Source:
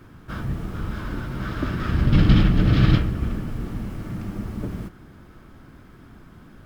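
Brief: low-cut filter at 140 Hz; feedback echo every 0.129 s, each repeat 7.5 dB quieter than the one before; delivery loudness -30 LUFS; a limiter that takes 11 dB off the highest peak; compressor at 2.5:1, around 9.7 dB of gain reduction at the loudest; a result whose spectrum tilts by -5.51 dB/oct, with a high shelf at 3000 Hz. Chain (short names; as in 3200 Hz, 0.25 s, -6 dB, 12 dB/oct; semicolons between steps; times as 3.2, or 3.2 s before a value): HPF 140 Hz; high shelf 3000 Hz +6 dB; compressor 2.5:1, threshold -29 dBFS; limiter -26.5 dBFS; feedback echo 0.129 s, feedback 42%, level -7.5 dB; gain +5 dB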